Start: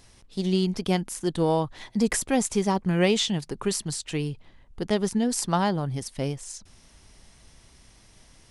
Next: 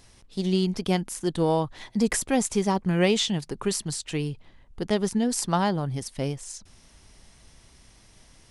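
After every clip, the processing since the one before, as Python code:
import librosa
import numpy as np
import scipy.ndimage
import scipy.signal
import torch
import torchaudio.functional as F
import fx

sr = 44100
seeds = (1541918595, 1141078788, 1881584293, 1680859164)

y = x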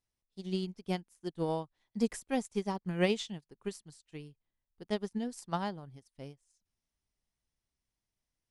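y = fx.upward_expand(x, sr, threshold_db=-38.0, expansion=2.5)
y = F.gain(torch.from_numpy(y), -5.0).numpy()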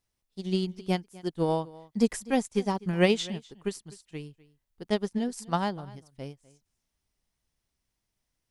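y = x + 10.0 ** (-21.0 / 20.0) * np.pad(x, (int(250 * sr / 1000.0), 0))[:len(x)]
y = F.gain(torch.from_numpy(y), 6.5).numpy()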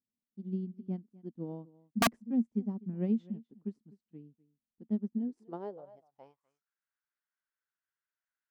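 y = fx.filter_sweep_bandpass(x, sr, from_hz=230.0, to_hz=1500.0, start_s=5.09, end_s=6.69, q=6.6)
y = (np.mod(10.0 ** (22.5 / 20.0) * y + 1.0, 2.0) - 1.0) / 10.0 ** (22.5 / 20.0)
y = F.gain(torch.from_numpy(y), 3.0).numpy()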